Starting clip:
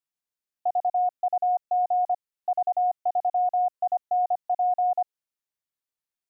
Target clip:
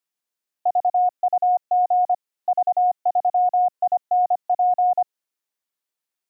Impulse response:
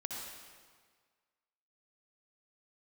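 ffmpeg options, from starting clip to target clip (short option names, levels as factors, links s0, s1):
-af "highpass=200,volume=1.78"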